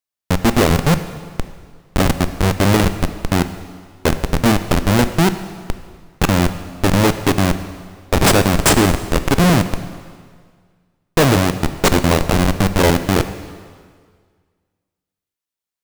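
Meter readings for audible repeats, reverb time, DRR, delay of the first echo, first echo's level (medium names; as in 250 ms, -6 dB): no echo, 1.8 s, 10.0 dB, no echo, no echo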